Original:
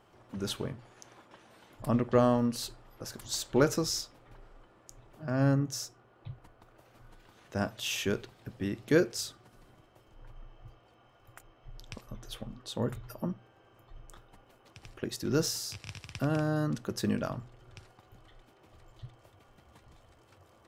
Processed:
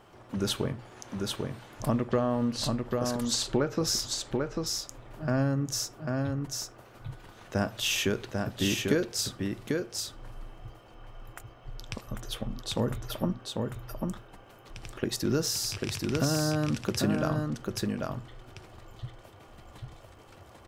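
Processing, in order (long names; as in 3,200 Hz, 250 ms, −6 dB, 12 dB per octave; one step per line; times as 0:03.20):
0:02.18–0:03.87: treble cut that deepens with the level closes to 2,900 Hz, closed at −22.5 dBFS
downward compressor 6 to 1, threshold −30 dBFS, peak gain reduction 11 dB
single-tap delay 794 ms −3.5 dB
level +6.5 dB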